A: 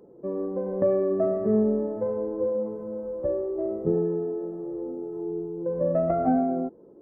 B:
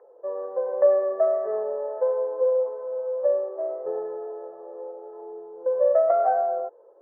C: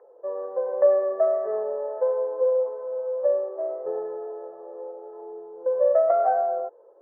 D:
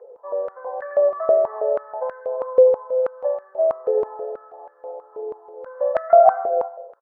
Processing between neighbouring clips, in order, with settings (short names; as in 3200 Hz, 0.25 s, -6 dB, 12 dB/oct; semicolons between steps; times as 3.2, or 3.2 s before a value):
elliptic band-pass 510–1800 Hz, stop band 40 dB; gain +6 dB
nothing audible
on a send: feedback echo 88 ms, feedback 42%, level -10 dB; on the sum: stepped high-pass 6.2 Hz 470–1600 Hz; gain -1 dB